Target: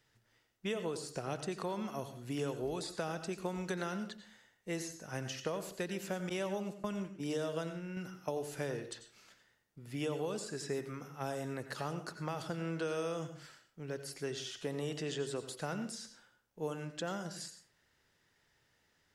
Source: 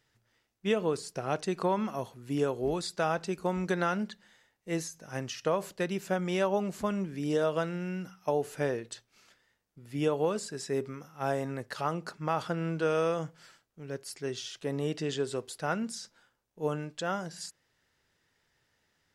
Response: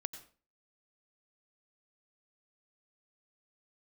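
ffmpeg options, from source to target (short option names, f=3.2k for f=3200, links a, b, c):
-filter_complex "[0:a]asettb=1/sr,asplit=3[a][b][c];[a]atrim=end=6.294[d];[b]atrim=start=6.29:end=7.97,asetpts=PTS-STARTPTS,afade=t=in:d=0.004:c=qsin,afade=t=out:st=1.676:d=0.004:c=qsin,agate=range=-29dB:threshold=-33dB:ratio=16:detection=peak[e];[c]atrim=start=7.966[f];[d][e]acrossfade=d=0.004:c1=hsin:c2=qsin[g];[g][f]acrossfade=d=0.004:c1=qsin:c2=hsin,acrossover=split=490|3200|6500[h][i][j][k];[h]acompressor=threshold=-39dB:ratio=4[l];[i]acompressor=threshold=-42dB:ratio=4[m];[j]acompressor=threshold=-51dB:ratio=4[n];[k]acompressor=threshold=-49dB:ratio=4[o];[l][m][n][o]amix=inputs=4:normalize=0[p];[1:a]atrim=start_sample=2205[q];[p][q]afir=irnorm=-1:irlink=0,volume=1.5dB"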